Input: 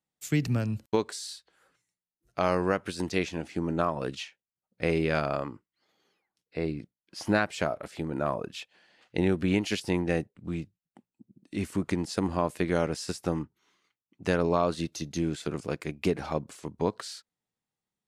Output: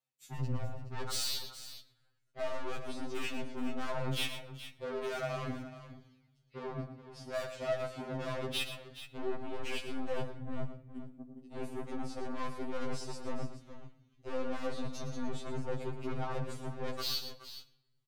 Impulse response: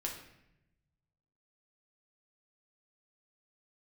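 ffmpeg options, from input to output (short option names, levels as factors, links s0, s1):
-filter_complex "[0:a]areverse,acompressor=threshold=0.0141:ratio=12,areverse,highpass=67,afwtdn=0.00562,equalizer=f=3200:t=o:w=1:g=4.5,aeval=exprs='(tanh(224*val(0)+0.25)-tanh(0.25))/224':c=same,lowshelf=f=110:g=-5,aecho=1:1:115|422:0.299|0.224,asplit=2[s0][s1];[1:a]atrim=start_sample=2205,asetrate=39690,aresample=44100[s2];[s1][s2]afir=irnorm=-1:irlink=0,volume=0.398[s3];[s0][s3]amix=inputs=2:normalize=0,afftfilt=real='re*2.45*eq(mod(b,6),0)':imag='im*2.45*eq(mod(b,6),0)':win_size=2048:overlap=0.75,volume=4.73"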